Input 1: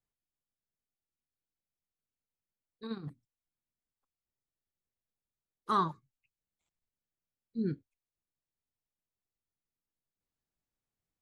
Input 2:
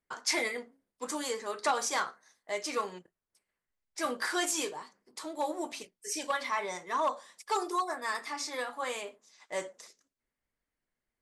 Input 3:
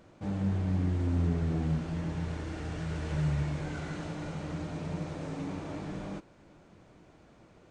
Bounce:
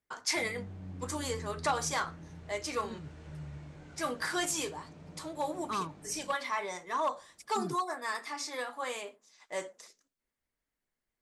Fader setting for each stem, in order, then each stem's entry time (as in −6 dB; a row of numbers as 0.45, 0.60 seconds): −6.0, −1.5, −14.5 decibels; 0.00, 0.00, 0.15 seconds